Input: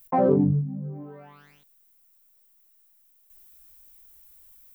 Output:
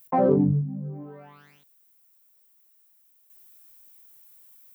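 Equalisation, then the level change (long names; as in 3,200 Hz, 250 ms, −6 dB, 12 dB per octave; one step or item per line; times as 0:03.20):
high-pass filter 83 Hz 24 dB per octave
0.0 dB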